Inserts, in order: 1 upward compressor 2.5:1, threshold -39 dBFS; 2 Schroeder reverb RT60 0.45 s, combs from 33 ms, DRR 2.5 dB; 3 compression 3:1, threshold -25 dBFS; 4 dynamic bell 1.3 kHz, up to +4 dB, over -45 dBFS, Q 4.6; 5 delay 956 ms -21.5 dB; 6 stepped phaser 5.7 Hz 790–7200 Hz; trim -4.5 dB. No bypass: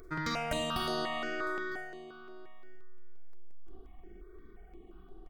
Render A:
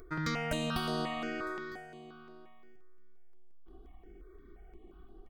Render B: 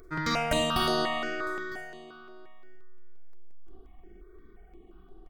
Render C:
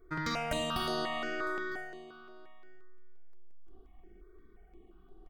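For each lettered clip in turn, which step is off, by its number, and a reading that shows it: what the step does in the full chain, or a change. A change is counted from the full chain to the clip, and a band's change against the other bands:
2, 125 Hz band +6.0 dB; 3, 2 kHz band -1.5 dB; 1, momentary loudness spread change -1 LU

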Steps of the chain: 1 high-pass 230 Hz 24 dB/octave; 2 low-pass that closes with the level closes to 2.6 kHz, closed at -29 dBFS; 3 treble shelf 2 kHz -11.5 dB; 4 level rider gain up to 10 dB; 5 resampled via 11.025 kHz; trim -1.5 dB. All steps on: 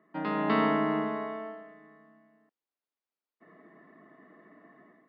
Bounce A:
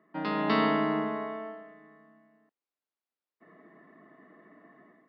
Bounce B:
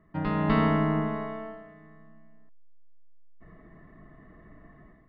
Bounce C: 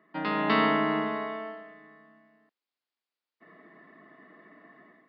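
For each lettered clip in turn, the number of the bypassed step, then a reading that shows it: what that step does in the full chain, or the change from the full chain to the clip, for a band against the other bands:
2, 4 kHz band +5.0 dB; 1, 125 Hz band +12.5 dB; 3, 4 kHz band +7.0 dB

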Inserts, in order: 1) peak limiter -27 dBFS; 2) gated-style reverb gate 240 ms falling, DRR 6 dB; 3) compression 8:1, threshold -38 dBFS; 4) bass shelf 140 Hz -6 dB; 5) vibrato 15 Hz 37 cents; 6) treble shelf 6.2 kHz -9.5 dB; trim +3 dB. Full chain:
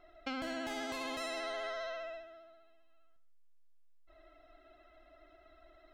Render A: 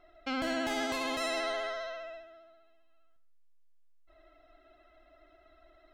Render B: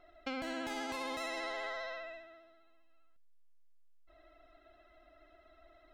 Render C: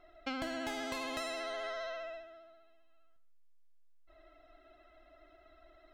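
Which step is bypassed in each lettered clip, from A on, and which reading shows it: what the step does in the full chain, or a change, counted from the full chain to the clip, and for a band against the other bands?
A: 3, mean gain reduction 1.5 dB; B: 2, 2 kHz band +2.0 dB; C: 1, crest factor change +2.5 dB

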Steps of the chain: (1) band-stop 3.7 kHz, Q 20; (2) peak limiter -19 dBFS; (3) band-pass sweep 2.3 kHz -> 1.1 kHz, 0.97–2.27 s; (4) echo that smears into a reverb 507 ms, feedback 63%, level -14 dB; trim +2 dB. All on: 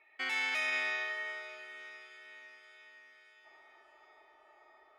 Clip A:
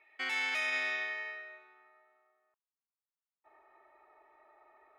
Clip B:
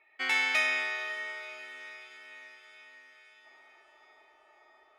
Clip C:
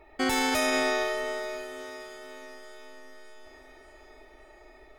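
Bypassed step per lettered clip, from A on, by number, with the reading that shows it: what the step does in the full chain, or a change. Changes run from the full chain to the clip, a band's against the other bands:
4, echo-to-direct -12.0 dB to none; 2, crest factor change +3.0 dB; 3, 2 kHz band -13.0 dB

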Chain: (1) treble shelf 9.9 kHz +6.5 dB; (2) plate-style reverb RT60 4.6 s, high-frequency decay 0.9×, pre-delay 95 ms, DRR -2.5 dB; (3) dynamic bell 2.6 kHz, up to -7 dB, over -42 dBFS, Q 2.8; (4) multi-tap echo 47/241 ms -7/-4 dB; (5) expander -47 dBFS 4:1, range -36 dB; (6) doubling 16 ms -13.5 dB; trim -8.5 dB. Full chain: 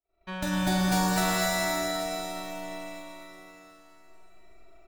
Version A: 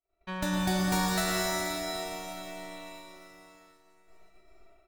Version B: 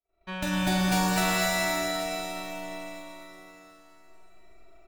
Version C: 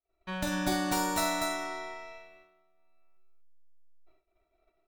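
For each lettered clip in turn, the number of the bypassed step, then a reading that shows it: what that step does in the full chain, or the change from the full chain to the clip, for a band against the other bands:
4, loudness change -2.5 LU; 3, 2 kHz band +2.0 dB; 2, loudness change -3.5 LU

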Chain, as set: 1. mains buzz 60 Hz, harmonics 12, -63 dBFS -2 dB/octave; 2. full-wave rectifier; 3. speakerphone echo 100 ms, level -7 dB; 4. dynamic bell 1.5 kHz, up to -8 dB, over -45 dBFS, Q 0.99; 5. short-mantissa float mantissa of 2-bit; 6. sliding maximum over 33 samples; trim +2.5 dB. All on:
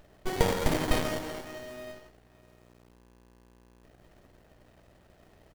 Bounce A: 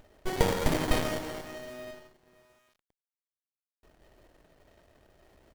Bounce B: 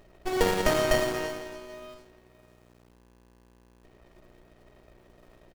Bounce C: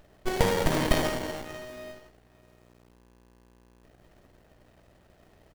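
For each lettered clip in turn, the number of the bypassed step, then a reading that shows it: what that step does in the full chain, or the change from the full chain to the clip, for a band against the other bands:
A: 1, momentary loudness spread change -1 LU; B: 2, crest factor change -5.5 dB; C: 4, crest factor change -2.0 dB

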